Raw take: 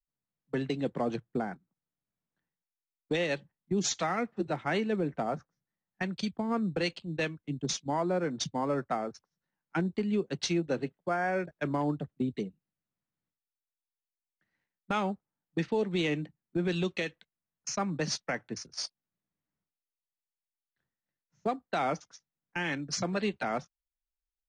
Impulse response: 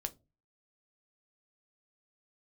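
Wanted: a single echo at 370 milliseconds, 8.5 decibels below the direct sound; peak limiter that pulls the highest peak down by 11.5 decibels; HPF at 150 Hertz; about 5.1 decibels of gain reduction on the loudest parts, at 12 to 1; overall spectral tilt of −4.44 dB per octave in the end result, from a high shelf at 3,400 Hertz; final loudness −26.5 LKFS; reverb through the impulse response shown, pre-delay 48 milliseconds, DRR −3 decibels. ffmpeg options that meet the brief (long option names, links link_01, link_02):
-filter_complex "[0:a]highpass=150,highshelf=frequency=3400:gain=5,acompressor=threshold=-30dB:ratio=12,alimiter=level_in=6.5dB:limit=-24dB:level=0:latency=1,volume=-6.5dB,aecho=1:1:370:0.376,asplit=2[link_01][link_02];[1:a]atrim=start_sample=2205,adelay=48[link_03];[link_02][link_03]afir=irnorm=-1:irlink=0,volume=4dB[link_04];[link_01][link_04]amix=inputs=2:normalize=0,volume=9dB"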